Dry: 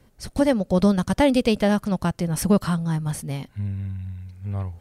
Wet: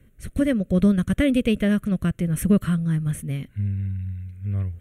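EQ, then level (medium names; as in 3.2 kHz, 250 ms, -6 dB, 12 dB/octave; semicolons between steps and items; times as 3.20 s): bass shelf 170 Hz +4 dB; static phaser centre 2.1 kHz, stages 4; 0.0 dB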